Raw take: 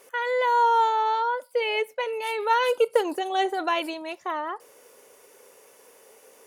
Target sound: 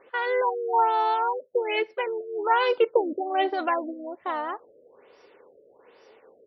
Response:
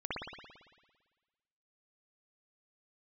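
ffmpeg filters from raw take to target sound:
-filter_complex "[0:a]asplit=2[s0][s1];[s1]asetrate=35002,aresample=44100,atempo=1.25992,volume=0.251[s2];[s0][s2]amix=inputs=2:normalize=0,afftfilt=real='re*lt(b*sr/1024,610*pow(5900/610,0.5+0.5*sin(2*PI*1.2*pts/sr)))':imag='im*lt(b*sr/1024,610*pow(5900/610,0.5+0.5*sin(2*PI*1.2*pts/sr)))':win_size=1024:overlap=0.75"

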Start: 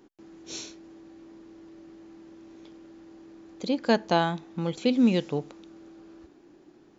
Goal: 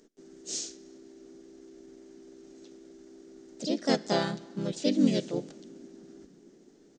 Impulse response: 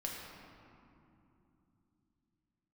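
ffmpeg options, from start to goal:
-filter_complex "[0:a]asplit=2[s0][s1];[1:a]atrim=start_sample=2205,highshelf=f=2000:g=10.5[s2];[s1][s2]afir=irnorm=-1:irlink=0,volume=0.0841[s3];[s0][s3]amix=inputs=2:normalize=0,asplit=3[s4][s5][s6];[s5]asetrate=35002,aresample=44100,atempo=1.25992,volume=0.562[s7];[s6]asetrate=52444,aresample=44100,atempo=0.840896,volume=1[s8];[s4][s7][s8]amix=inputs=3:normalize=0,equalizer=f=100:t=o:w=0.67:g=-10,equalizer=f=1000:t=o:w=0.67:g=-11,equalizer=f=2500:t=o:w=0.67:g=-5,equalizer=f=6300:t=o:w=0.67:g=9,volume=0.501"

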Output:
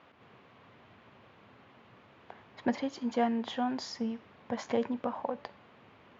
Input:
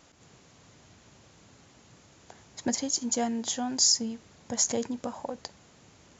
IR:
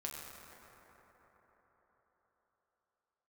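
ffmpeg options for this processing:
-af "highpass=130,equalizer=f=160:t=q:w=4:g=-7,equalizer=f=310:t=q:w=4:g=-4,equalizer=f=1100:t=q:w=4:g=4,lowpass=f=3000:w=0.5412,lowpass=f=3000:w=1.3066,bandreject=f=288.9:t=h:w=4,bandreject=f=577.8:t=h:w=4,bandreject=f=866.7:t=h:w=4,bandreject=f=1155.6:t=h:w=4,bandreject=f=1444.5:t=h:w=4,bandreject=f=1733.4:t=h:w=4,bandreject=f=2022.3:t=h:w=4,bandreject=f=2311.2:t=h:w=4,bandreject=f=2600.1:t=h:w=4,bandreject=f=2889:t=h:w=4,bandreject=f=3177.9:t=h:w=4,bandreject=f=3466.8:t=h:w=4,bandreject=f=3755.7:t=h:w=4,bandreject=f=4044.6:t=h:w=4,bandreject=f=4333.5:t=h:w=4,bandreject=f=4622.4:t=h:w=4,bandreject=f=4911.3:t=h:w=4,bandreject=f=5200.2:t=h:w=4,bandreject=f=5489.1:t=h:w=4,bandreject=f=5778:t=h:w=4,bandreject=f=6066.9:t=h:w=4,bandreject=f=6355.8:t=h:w=4,bandreject=f=6644.7:t=h:w=4,bandreject=f=6933.6:t=h:w=4,bandreject=f=7222.5:t=h:w=4,bandreject=f=7511.4:t=h:w=4,bandreject=f=7800.3:t=h:w=4,bandreject=f=8089.2:t=h:w=4,bandreject=f=8378.1:t=h:w=4,bandreject=f=8667:t=h:w=4,bandreject=f=8955.9:t=h:w=4,bandreject=f=9244.8:t=h:w=4,volume=1.19"

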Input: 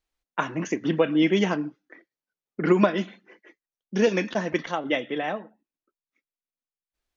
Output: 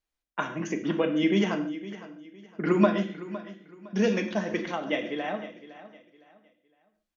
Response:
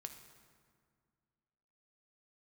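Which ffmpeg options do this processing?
-filter_complex "[0:a]aecho=1:1:510|1020|1530:0.168|0.0504|0.0151[s0];[1:a]atrim=start_sample=2205,afade=t=out:st=0.28:d=0.01,atrim=end_sample=12789,asetrate=66150,aresample=44100[s1];[s0][s1]afir=irnorm=-1:irlink=0,volume=1.78"

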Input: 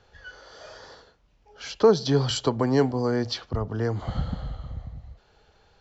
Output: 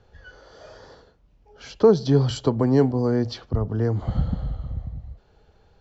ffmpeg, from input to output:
-af "tiltshelf=f=670:g=5.5"

